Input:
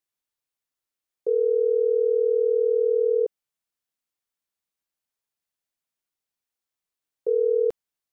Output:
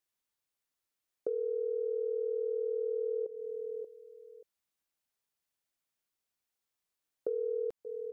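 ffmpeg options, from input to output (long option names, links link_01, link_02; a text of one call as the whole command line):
ffmpeg -i in.wav -filter_complex "[0:a]asplit=2[link_01][link_02];[link_02]aecho=0:1:582|1164:0.126|0.0264[link_03];[link_01][link_03]amix=inputs=2:normalize=0,alimiter=limit=-18.5dB:level=0:latency=1:release=68,acompressor=threshold=-33dB:ratio=4" out.wav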